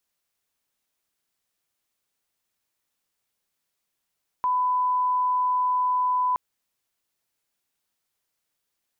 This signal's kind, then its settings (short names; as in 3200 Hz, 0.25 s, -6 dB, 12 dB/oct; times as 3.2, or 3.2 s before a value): line-up tone -20 dBFS 1.92 s